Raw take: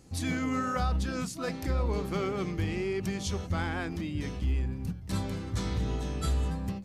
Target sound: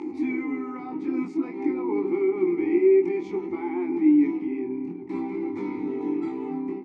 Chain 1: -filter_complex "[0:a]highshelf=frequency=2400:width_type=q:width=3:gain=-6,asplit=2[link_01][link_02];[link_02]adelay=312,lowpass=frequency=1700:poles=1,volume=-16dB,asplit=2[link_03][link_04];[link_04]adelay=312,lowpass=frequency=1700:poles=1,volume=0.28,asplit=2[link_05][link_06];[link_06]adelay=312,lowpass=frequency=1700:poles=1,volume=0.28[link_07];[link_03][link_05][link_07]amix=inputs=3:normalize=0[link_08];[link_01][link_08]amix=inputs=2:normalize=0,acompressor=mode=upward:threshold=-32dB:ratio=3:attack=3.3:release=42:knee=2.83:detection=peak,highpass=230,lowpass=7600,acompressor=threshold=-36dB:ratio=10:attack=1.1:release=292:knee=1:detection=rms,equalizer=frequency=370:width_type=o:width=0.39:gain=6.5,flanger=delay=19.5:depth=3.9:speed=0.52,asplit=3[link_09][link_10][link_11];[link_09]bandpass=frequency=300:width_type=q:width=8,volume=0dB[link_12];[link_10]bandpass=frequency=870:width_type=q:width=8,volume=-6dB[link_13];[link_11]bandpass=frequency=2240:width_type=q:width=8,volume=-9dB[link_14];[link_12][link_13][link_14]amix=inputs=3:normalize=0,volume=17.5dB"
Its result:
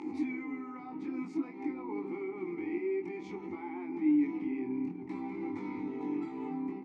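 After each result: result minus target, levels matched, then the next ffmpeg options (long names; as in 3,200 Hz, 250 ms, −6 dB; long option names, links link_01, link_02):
downward compressor: peak gain reduction +7.5 dB; 500 Hz band −4.0 dB
-filter_complex "[0:a]highshelf=frequency=2400:width_type=q:width=3:gain=-6,asplit=2[link_01][link_02];[link_02]adelay=312,lowpass=frequency=1700:poles=1,volume=-16dB,asplit=2[link_03][link_04];[link_04]adelay=312,lowpass=frequency=1700:poles=1,volume=0.28,asplit=2[link_05][link_06];[link_06]adelay=312,lowpass=frequency=1700:poles=1,volume=0.28[link_07];[link_03][link_05][link_07]amix=inputs=3:normalize=0[link_08];[link_01][link_08]amix=inputs=2:normalize=0,acompressor=mode=upward:threshold=-32dB:ratio=3:attack=3.3:release=42:knee=2.83:detection=peak,highpass=230,lowpass=7600,acompressor=threshold=-27.5dB:ratio=10:attack=1.1:release=292:knee=1:detection=rms,equalizer=frequency=370:width_type=o:width=0.39:gain=6.5,flanger=delay=19.5:depth=3.9:speed=0.52,asplit=3[link_09][link_10][link_11];[link_09]bandpass=frequency=300:width_type=q:width=8,volume=0dB[link_12];[link_10]bandpass=frequency=870:width_type=q:width=8,volume=-6dB[link_13];[link_11]bandpass=frequency=2240:width_type=q:width=8,volume=-9dB[link_14];[link_12][link_13][link_14]amix=inputs=3:normalize=0,volume=17.5dB"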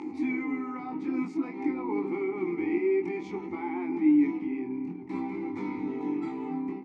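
500 Hz band −3.0 dB
-filter_complex "[0:a]highshelf=frequency=2400:width_type=q:width=3:gain=-6,asplit=2[link_01][link_02];[link_02]adelay=312,lowpass=frequency=1700:poles=1,volume=-16dB,asplit=2[link_03][link_04];[link_04]adelay=312,lowpass=frequency=1700:poles=1,volume=0.28,asplit=2[link_05][link_06];[link_06]adelay=312,lowpass=frequency=1700:poles=1,volume=0.28[link_07];[link_03][link_05][link_07]amix=inputs=3:normalize=0[link_08];[link_01][link_08]amix=inputs=2:normalize=0,acompressor=mode=upward:threshold=-32dB:ratio=3:attack=3.3:release=42:knee=2.83:detection=peak,highpass=230,lowpass=7600,acompressor=threshold=-27.5dB:ratio=10:attack=1.1:release=292:knee=1:detection=rms,equalizer=frequency=370:width_type=o:width=0.39:gain=16,flanger=delay=19.5:depth=3.9:speed=0.52,asplit=3[link_09][link_10][link_11];[link_09]bandpass=frequency=300:width_type=q:width=8,volume=0dB[link_12];[link_10]bandpass=frequency=870:width_type=q:width=8,volume=-6dB[link_13];[link_11]bandpass=frequency=2240:width_type=q:width=8,volume=-9dB[link_14];[link_12][link_13][link_14]amix=inputs=3:normalize=0,volume=17.5dB"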